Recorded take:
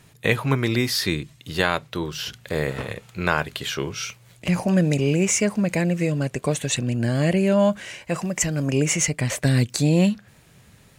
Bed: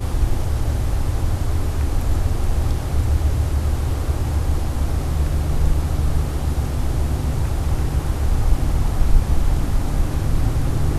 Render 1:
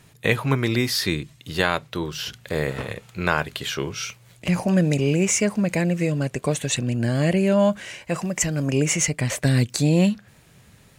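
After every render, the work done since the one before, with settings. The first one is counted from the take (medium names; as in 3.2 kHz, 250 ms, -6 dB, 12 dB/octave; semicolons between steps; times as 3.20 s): no audible change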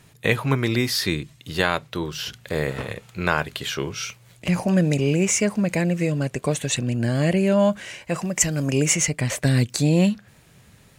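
8.37–8.95 s: treble shelf 4.1 kHz +5 dB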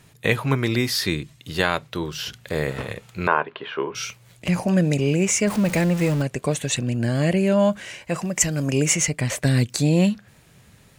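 3.27–3.95 s: cabinet simulation 280–2600 Hz, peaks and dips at 410 Hz +5 dB, 990 Hz +9 dB, 2.1 kHz -5 dB; 5.47–6.22 s: jump at every zero crossing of -26 dBFS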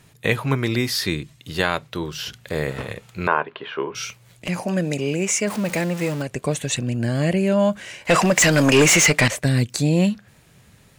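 4.48–6.29 s: high-pass 250 Hz 6 dB/octave; 8.05–9.28 s: overdrive pedal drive 26 dB, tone 4.3 kHz, clips at -4.5 dBFS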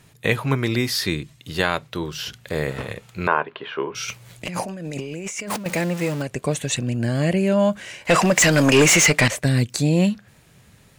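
4.08–5.66 s: compressor with a negative ratio -30 dBFS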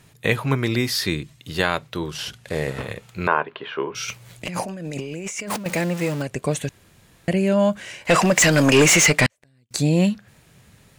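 2.09–2.78 s: CVSD coder 64 kbps; 6.69–7.28 s: room tone; 9.26–9.71 s: inverted gate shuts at -16 dBFS, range -41 dB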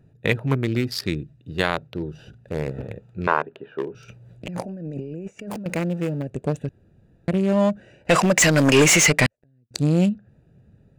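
local Wiener filter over 41 samples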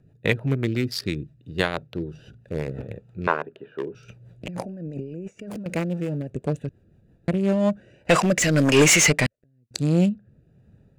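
rotary cabinet horn 6 Hz, later 1.1 Hz, at 7.24 s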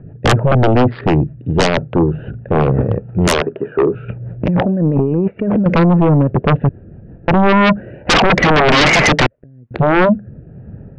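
Gaussian low-pass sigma 4.7 samples; sine folder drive 17 dB, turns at -7 dBFS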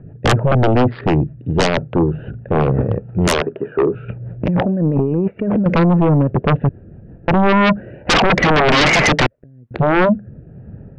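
trim -2 dB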